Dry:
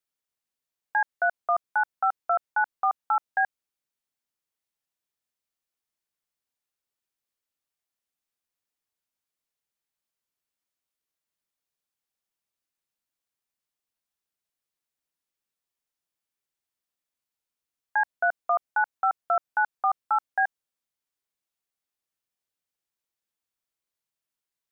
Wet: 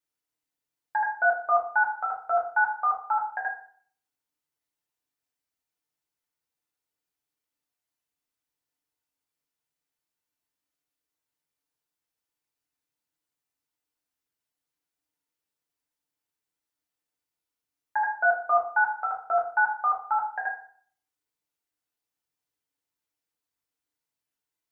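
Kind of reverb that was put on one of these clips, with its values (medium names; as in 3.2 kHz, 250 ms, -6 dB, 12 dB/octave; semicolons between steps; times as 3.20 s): FDN reverb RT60 0.52 s, low-frequency decay 1.1×, high-frequency decay 0.6×, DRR -4 dB; trim -4.5 dB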